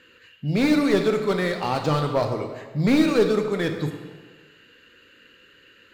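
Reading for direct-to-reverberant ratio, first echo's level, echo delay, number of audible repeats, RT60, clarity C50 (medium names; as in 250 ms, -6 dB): 5.0 dB, no echo, no echo, no echo, 1.5 s, 6.5 dB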